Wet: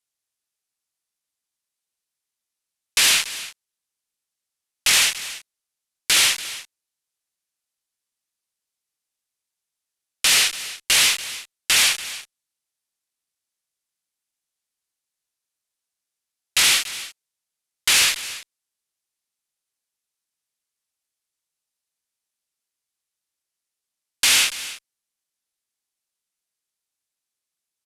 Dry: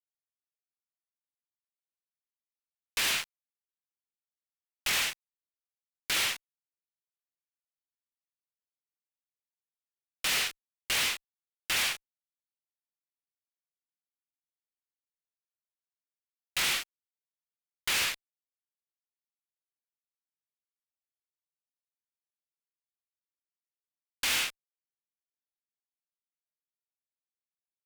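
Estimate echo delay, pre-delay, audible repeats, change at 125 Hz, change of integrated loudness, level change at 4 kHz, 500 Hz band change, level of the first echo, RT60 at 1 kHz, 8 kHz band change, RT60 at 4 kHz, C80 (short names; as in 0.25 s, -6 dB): 0.285 s, none, 1, +6.5 dB, +12.0 dB, +12.5 dB, +7.0 dB, -15.5 dB, none, +15.0 dB, none, none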